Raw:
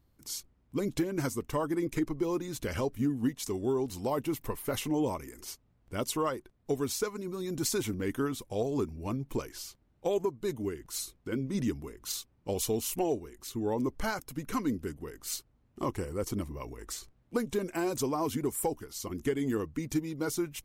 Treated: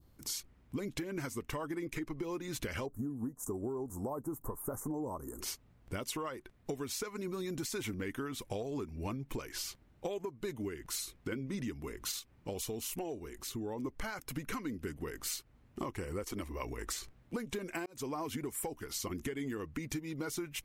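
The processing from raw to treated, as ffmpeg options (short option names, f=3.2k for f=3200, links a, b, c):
-filter_complex "[0:a]asettb=1/sr,asplit=3[a][b][c];[a]atrim=end=2.864[d];[b]atrim=start=2.86:end=5.41,asetpts=PTS-STARTPTS,afade=t=in:d=0.004:c=qsin,afade=t=out:st=2.546:d=0.004:c=qsin,asuperstop=centerf=3100:order=8:qfactor=0.52[e];[c]atrim=start=5.406[f];[d][e]acrossfade=d=0.004:c1=hsin:c2=qsin[g];[g][f]acrossfade=d=0.004:c1=qsin:c2=hsin,asettb=1/sr,asplit=3[h][i][j];[h]atrim=end=12.194[k];[i]atrim=start=12.19:end=13.85,asetpts=PTS-STARTPTS,afade=t=in:d=0.004:c=qsin,afade=t=out:st=1.656:d=0.004:c=qsin,acompressor=threshold=-51dB:ratio=1.5:attack=3.2:release=140:knee=1:detection=peak[l];[j]atrim=start=13.846[m];[k][l]acrossfade=d=0.004:c1=hsin:c2=qsin[n];[n][m]acrossfade=d=0.004:c1=qsin:c2=hsin,asettb=1/sr,asplit=3[o][p][q];[o]atrim=end=16.224[r];[p]atrim=start=16.22:end=16.63,asetpts=PTS-STARTPTS,afade=t=in:d=0.004:c=qsin,afade=t=out:st=0.406:d=0.004:c=qsin,equalizer=f=140:w=1.5:g=-14.5[s];[q]atrim=start=16.626[t];[r][s]acrossfade=d=0.004:c1=hsin:c2=qsin[u];[u][t]acrossfade=d=0.004:c1=qsin:c2=hsin,asplit=2[v][w];[v]atrim=end=17.86,asetpts=PTS-STARTPTS,afade=t=out:st=17.856:d=0.004:c=hsin[x];[w]atrim=start=17.86,asetpts=PTS-STARTPTS,afade=t=in:d=0.52[y];[x][y]concat=n=2:v=0:a=1,adynamicequalizer=threshold=0.00251:dfrequency=2100:dqfactor=0.95:tfrequency=2100:tqfactor=0.95:attack=5:release=100:ratio=0.375:range=3.5:mode=boostabove:tftype=bell,alimiter=limit=-23.5dB:level=0:latency=1:release=247,acompressor=threshold=-41dB:ratio=6,volume=5dB"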